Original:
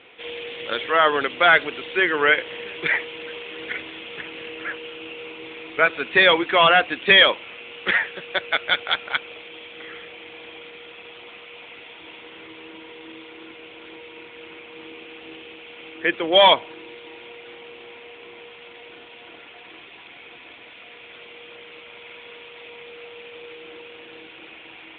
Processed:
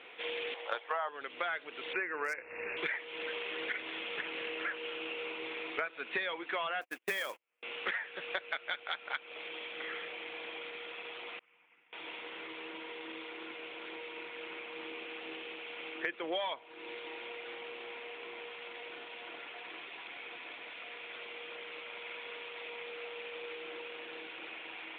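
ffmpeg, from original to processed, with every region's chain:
ffmpeg -i in.wav -filter_complex "[0:a]asettb=1/sr,asplit=3[link_01][link_02][link_03];[link_01]atrim=end=0.544[link_04];[link_02]atrim=start=0.54:end=1.09,asetpts=PTS-STARTPTS,afade=type=in:duration=0.004:curve=qsin,afade=type=out:start_time=0.546:duration=0.004:curve=qsin,highpass=380,agate=range=-11dB:threshold=-28dB:ratio=16:release=100:detection=peak,equalizer=frequency=820:width=1.2:gain=14.5[link_05];[link_03]atrim=start=1.086[link_06];[link_04][link_05]acrossfade=duration=0.004:curve1=hsin:curve2=qsin[link_07];[link_07][link_06]acrossfade=duration=0.004:curve1=qsin:curve2=hsin,asettb=1/sr,asplit=3[link_08][link_09][link_10];[link_08]atrim=end=1.934[link_11];[link_09]atrim=start=1.93:end=2.77,asetpts=PTS-STARTPTS,afade=type=in:duration=0.004:curve=qsin,afade=type=out:start_time=0.836:duration=0.004:curve=qsin,aeval=exprs='0.422*(abs(mod(val(0)/0.422+3,4)-2)-1)':channel_layout=same,asuperstop=centerf=3500:order=20:qfactor=2.1,aeval=exprs='val(0)+0.00316*(sin(2*PI*60*n/s)+sin(2*PI*2*60*n/s)/2+sin(2*PI*3*60*n/s)/3+sin(2*PI*4*60*n/s)/4+sin(2*PI*5*60*n/s)/5)':channel_layout=same[link_12];[link_10]atrim=start=2.766[link_13];[link_11][link_12]acrossfade=duration=0.004:curve1=hsin:curve2=qsin[link_14];[link_14][link_13]acrossfade=duration=0.004:curve1=qsin:curve2=hsin,asettb=1/sr,asplit=3[link_15][link_16][link_17];[link_15]atrim=end=6.814[link_18];[link_16]atrim=start=6.81:end=7.63,asetpts=PTS-STARTPTS,afade=type=in:duration=0.004:curve=qsin,afade=type=out:start_time=0.816:duration=0.004:curve=qsin,lowpass=2700,agate=range=-39dB:threshold=-32dB:ratio=16:release=100:detection=peak,acrusher=bits=3:mode=log:mix=0:aa=0.000001[link_19];[link_17]atrim=start=7.626[link_20];[link_18][link_19]acrossfade=duration=0.004:curve1=hsin:curve2=qsin[link_21];[link_21][link_20]acrossfade=duration=0.004:curve1=qsin:curve2=hsin,asettb=1/sr,asplit=3[link_22][link_23][link_24];[link_22]atrim=end=11.394[link_25];[link_23]atrim=start=11.39:end=11.93,asetpts=PTS-STARTPTS,afade=type=in:duration=0.004:curve=qsin,afade=type=out:start_time=0.536:duration=0.004:curve=qsin,agate=range=-33dB:threshold=-30dB:ratio=3:release=100:detection=peak,highpass=150,equalizer=frequency=170:width_type=q:width=4:gain=10,equalizer=frequency=440:width_type=q:width=4:gain=-8,equalizer=frequency=630:width_type=q:width=4:gain=-9,lowpass=frequency=2700:width=0.5412,lowpass=frequency=2700:width=1.3066[link_26];[link_24]atrim=start=11.926[link_27];[link_25][link_26]acrossfade=duration=0.004:curve1=hsin:curve2=qsin[link_28];[link_28][link_27]acrossfade=duration=0.004:curve1=qsin:curve2=hsin,highpass=frequency=580:poles=1,equalizer=frequency=3200:width=1.5:gain=-4,acompressor=threshold=-33dB:ratio=12" out.wav

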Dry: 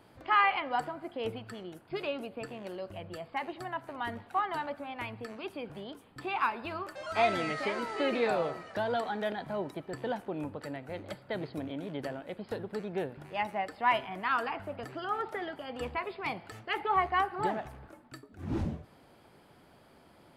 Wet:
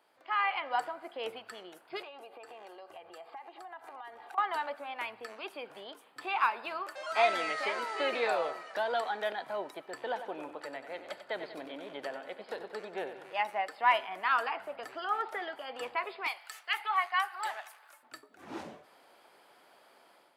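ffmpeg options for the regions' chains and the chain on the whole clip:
ffmpeg -i in.wav -filter_complex "[0:a]asettb=1/sr,asplit=3[link_01][link_02][link_03];[link_01]atrim=end=2.024[link_04];[link_02]atrim=start=2.02:end=4.38,asetpts=PTS-STARTPTS,afade=type=in:duration=0.004:curve=qsin,afade=type=out:start_time=2.356:duration=0.004:curve=qsin,equalizer=frequency=830:width=1.3:gain=7,aecho=1:1:2.5:0.46,atrim=end_sample=104076,acompressor=threshold=-43dB:ratio=16:attack=3.2:release=140:knee=1:detection=peak[link_05];[link_03]atrim=start=4.376[link_06];[link_04][link_05]acrossfade=duration=0.004:curve1=hsin:curve2=qsin[link_07];[link_07][link_06]acrossfade=duration=0.004:curve1=qsin:curve2=hsin,asettb=1/sr,asplit=3[link_08][link_09][link_10];[link_08]atrim=end=9.984[link_11];[link_09]atrim=start=9.98:end=13.32,asetpts=PTS-STARTPTS,afade=type=in:duration=0.004:curve=qsin,afade=type=out:start_time=3.336:duration=0.004:curve=qsin,highshelf=frequency=9700:gain=-9,aecho=1:1:94|188|282|376|470|564:0.299|0.158|0.0839|0.0444|0.0236|0.0125,atrim=end_sample=147294[link_12];[link_10]atrim=start=13.316[link_13];[link_11][link_12]acrossfade=duration=0.004:curve1=hsin:curve2=qsin[link_14];[link_14][link_13]acrossfade=duration=0.004:curve1=qsin:curve2=hsin,asettb=1/sr,asplit=3[link_15][link_16][link_17];[link_15]atrim=end=16.274[link_18];[link_16]atrim=start=16.27:end=18.03,asetpts=PTS-STARTPTS,afade=type=in:duration=0.004:curve=qsin,afade=type=out:start_time=1.756:duration=0.004:curve=qsin,highpass=1100,aemphasis=mode=production:type=cd[link_19];[link_17]atrim=start=18.026[link_20];[link_18][link_19]acrossfade=duration=0.004:curve1=hsin:curve2=qsin[link_21];[link_21][link_20]acrossfade=duration=0.004:curve1=qsin:curve2=hsin,highpass=570,dynaudnorm=framelen=380:gausssize=3:maxgain=9dB,volume=-7dB" out.wav

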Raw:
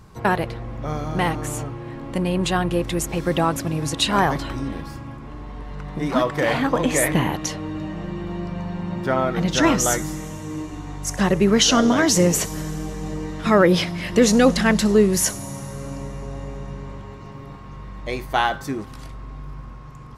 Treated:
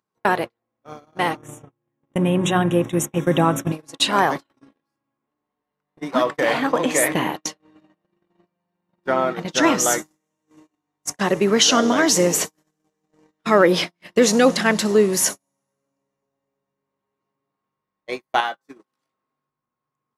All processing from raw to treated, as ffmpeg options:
ffmpeg -i in.wav -filter_complex "[0:a]asettb=1/sr,asplit=3[link_01][link_02][link_03];[link_01]atrim=end=1.374[link_04];[link_02]atrim=start=1.37:end=3.72,asetpts=PTS-STARTPTS,afade=type=in:duration=0.004:curve=qsin,afade=type=out:start_time=2.346:duration=0.004:curve=qsin,asuperstop=centerf=4600:order=20:qfactor=2.9,equalizer=frequency=130:width_type=o:width=1.8:gain=12.5,bandreject=frequency=94.74:width_type=h:width=4,bandreject=frequency=189.48:width_type=h:width=4,bandreject=frequency=284.22:width_type=h:width=4,bandreject=frequency=378.96:width_type=h:width=4,bandreject=frequency=473.7:width_type=h:width=4,bandreject=frequency=568.44:width_type=h:width=4,bandreject=frequency=663.18:width_type=h:width=4,bandreject=frequency=757.92:width_type=h:width=4,bandreject=frequency=852.66:width_type=h:width=4,bandreject=frequency=947.4:width_type=h:width=4,bandreject=frequency=1042.14:width_type=h:width=4,bandreject=frequency=1136.88:width_type=h:width=4,bandreject=frequency=1231.62:width_type=h:width=4,bandreject=frequency=1326.36:width_type=h:width=4,bandreject=frequency=1421.1:width_type=h:width=4,bandreject=frequency=1515.84:width_type=h:width=4,bandreject=frequency=1610.58:width_type=h:width=4,bandreject=frequency=1705.32:width_type=h:width=4,bandreject=frequency=1800.06:width_type=h:width=4,bandreject=frequency=1894.8:width_type=h:width=4,bandreject=frequency=1989.54:width_type=h:width=4,bandreject=frequency=2084.28:width_type=h:width=4,bandreject=frequency=2179.02:width_type=h:width=4[link_05];[link_03]atrim=start=3.716[link_06];[link_04][link_05]acrossfade=duration=0.004:curve1=hsin:curve2=qsin[link_07];[link_07][link_06]acrossfade=duration=0.004:curve1=qsin:curve2=hsin,asettb=1/sr,asplit=3[link_08][link_09][link_10];[link_08]atrim=end=18.404[link_11];[link_09]atrim=start=18.4:end=19.49,asetpts=PTS-STARTPTS,afade=type=in:duration=0.004:curve=qsin,afade=type=out:start_time=1.086:duration=0.004:curve=qsin,highpass=frequency=220:poles=1,acompressor=threshold=-30dB:ratio=1.5:attack=3.2:release=140:knee=1:detection=peak,asplit=2[link_12][link_13];[link_13]adelay=21,volume=-10dB[link_14];[link_12][link_14]amix=inputs=2:normalize=0,atrim=end_sample=48069[link_15];[link_10]atrim=start=19.486[link_16];[link_11][link_15]acrossfade=duration=0.004:curve1=hsin:curve2=qsin[link_17];[link_17][link_16]acrossfade=duration=0.004:curve1=qsin:curve2=hsin,acompressor=mode=upward:threshold=-19dB:ratio=2.5,highpass=260,agate=range=-48dB:threshold=-24dB:ratio=16:detection=peak,volume=1.5dB" out.wav

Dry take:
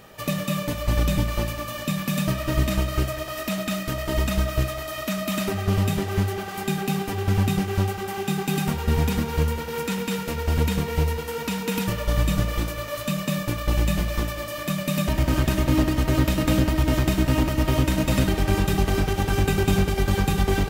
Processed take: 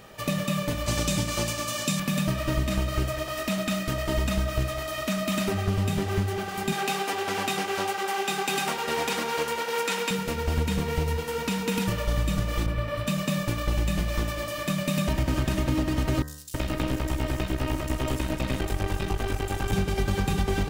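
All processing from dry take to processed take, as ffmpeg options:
ffmpeg -i in.wav -filter_complex "[0:a]asettb=1/sr,asplit=3[link_01][link_02][link_03];[link_01]atrim=end=0.864[link_04];[link_02]atrim=start=0.86:end=2,asetpts=PTS-STARTPTS,afade=type=in:duration=0.004:curve=qsin,afade=type=out:start_time=1.136:duration=0.004:curve=qsin,highpass=97,equalizer=frequency=7000:width=0.68:gain=10.5,bandreject=frequency=1900:width=19[link_05];[link_03]atrim=start=1.996[link_06];[link_04][link_05]acrossfade=duration=0.004:curve1=hsin:curve2=qsin[link_07];[link_07][link_06]acrossfade=duration=0.004:curve1=qsin:curve2=hsin,asettb=1/sr,asplit=3[link_08][link_09][link_10];[link_08]atrim=end=6.724[link_11];[link_09]atrim=start=6.72:end=10.11,asetpts=PTS-STARTPTS,afade=type=in:duration=0.004:curve=qsin,afade=type=out:start_time=3.386:duration=0.004:curve=qsin,highshelf=frequency=12000:gain=-5,acontrast=23,highpass=500[link_12];[link_10]atrim=start=10.106[link_13];[link_11][link_12]acrossfade=duration=0.004:curve1=hsin:curve2=qsin[link_14];[link_14][link_13]acrossfade=duration=0.004:curve1=qsin:curve2=hsin,asettb=1/sr,asplit=3[link_15][link_16][link_17];[link_15]atrim=end=12.664[link_18];[link_16]atrim=start=12.66:end=13.07,asetpts=PTS-STARTPTS,afade=type=in:duration=0.004:curve=qsin,afade=type=out:start_time=0.406:duration=0.004:curve=qsin,bass=frequency=250:gain=8,treble=frequency=4000:gain=-12,bandreject=frequency=6600:width=8[link_19];[link_17]atrim=start=13.066[link_20];[link_18][link_19]acrossfade=duration=0.004:curve1=hsin:curve2=qsin[link_21];[link_21][link_20]acrossfade=duration=0.004:curve1=qsin:curve2=hsin,asettb=1/sr,asplit=3[link_22][link_23][link_24];[link_22]atrim=end=16.224[link_25];[link_23]atrim=start=16.22:end=19.73,asetpts=PTS-STARTPTS,afade=type=in:duration=0.004:curve=qsin,afade=type=out:start_time=3.506:duration=0.004:curve=qsin,equalizer=frequency=180:width=1.7:gain=-6.5,aeval=exprs='(tanh(6.31*val(0)+0.75)-tanh(0.75))/6.31':channel_layout=same,acrossover=split=5100[link_26][link_27];[link_26]adelay=320[link_28];[link_28][link_27]amix=inputs=2:normalize=0,atrim=end_sample=154791[link_29];[link_24]atrim=start=19.726[link_30];[link_25][link_29]acrossfade=duration=0.004:curve1=hsin:curve2=qsin[link_31];[link_31][link_30]acrossfade=duration=0.004:curve1=qsin:curve2=hsin,equalizer=frequency=13000:width_type=o:width=0.22:gain=-8.5,bandreject=frequency=74.21:width_type=h:width=4,bandreject=frequency=148.42:width_type=h:width=4,bandreject=frequency=222.63:width_type=h:width=4,bandreject=frequency=296.84:width_type=h:width=4,bandreject=frequency=371.05:width_type=h:width=4,bandreject=frequency=445.26:width_type=h:width=4,bandreject=frequency=519.47:width_type=h:width=4,bandreject=frequency=593.68:width_type=h:width=4,bandreject=frequency=667.89:width_type=h:width=4,bandreject=frequency=742.1:width_type=h:width=4,bandreject=frequency=816.31:width_type=h:width=4,bandreject=frequency=890.52:width_type=h:width=4,bandreject=frequency=964.73:width_type=h:width=4,bandreject=frequency=1038.94:width_type=h:width=4,bandreject=frequency=1113.15:width_type=h:width=4,bandreject=frequency=1187.36:width_type=h:width=4,bandreject=frequency=1261.57:width_type=h:width=4,bandreject=frequency=1335.78:width_type=h:width=4,bandreject=frequency=1409.99:width_type=h:width=4,bandreject=frequency=1484.2:width_type=h:width=4,bandreject=frequency=1558.41:width_type=h:width=4,bandreject=frequency=1632.62:width_type=h:width=4,bandreject=frequency=1706.83:width_type=h:width=4,bandreject=frequency=1781.04:width_type=h:width=4,bandreject=frequency=1855.25:width_type=h:width=4,bandreject=frequency=1929.46:width_type=h:width=4,bandreject=frequency=2003.67:width_type=h:width=4,acompressor=threshold=-21dB:ratio=6" out.wav

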